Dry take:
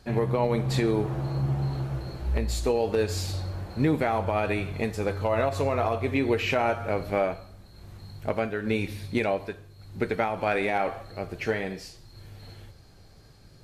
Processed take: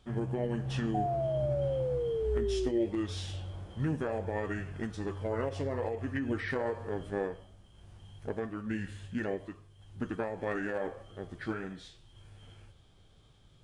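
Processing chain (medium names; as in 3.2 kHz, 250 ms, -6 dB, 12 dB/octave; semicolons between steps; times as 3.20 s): formant shift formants -5 st; painted sound fall, 0.94–2.87 s, 340–740 Hz -24 dBFS; trim -8 dB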